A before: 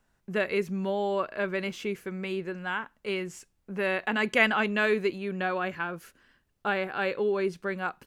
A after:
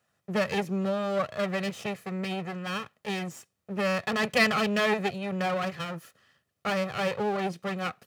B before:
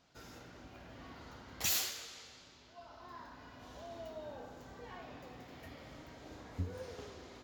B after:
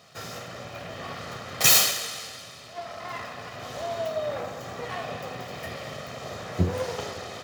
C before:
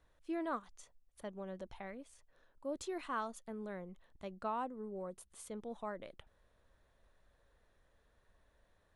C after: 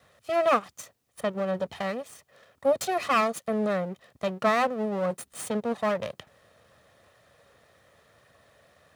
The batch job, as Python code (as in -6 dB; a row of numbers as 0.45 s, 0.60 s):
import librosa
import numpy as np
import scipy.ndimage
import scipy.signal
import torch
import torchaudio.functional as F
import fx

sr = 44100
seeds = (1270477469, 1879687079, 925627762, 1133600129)

y = fx.lower_of_two(x, sr, delay_ms=1.6)
y = scipy.signal.sosfilt(scipy.signal.butter(4, 100.0, 'highpass', fs=sr, output='sos'), y)
y = fx.dynamic_eq(y, sr, hz=140.0, q=0.83, threshold_db=-47.0, ratio=4.0, max_db=5)
y = y * 10.0 ** (-30 / 20.0) / np.sqrt(np.mean(np.square(y)))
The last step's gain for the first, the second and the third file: +1.0 dB, +17.5 dB, +17.0 dB